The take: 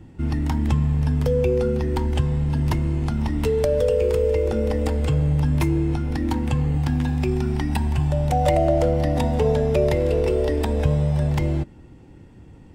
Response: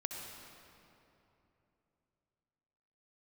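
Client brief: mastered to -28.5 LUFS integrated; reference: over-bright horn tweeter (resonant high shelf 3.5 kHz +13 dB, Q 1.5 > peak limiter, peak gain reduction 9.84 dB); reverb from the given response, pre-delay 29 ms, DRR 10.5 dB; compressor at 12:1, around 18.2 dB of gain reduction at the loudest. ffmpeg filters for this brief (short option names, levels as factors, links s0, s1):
-filter_complex "[0:a]acompressor=threshold=0.0224:ratio=12,asplit=2[s0][s1];[1:a]atrim=start_sample=2205,adelay=29[s2];[s1][s2]afir=irnorm=-1:irlink=0,volume=0.282[s3];[s0][s3]amix=inputs=2:normalize=0,highshelf=f=3500:t=q:w=1.5:g=13,volume=2.82,alimiter=limit=0.112:level=0:latency=1"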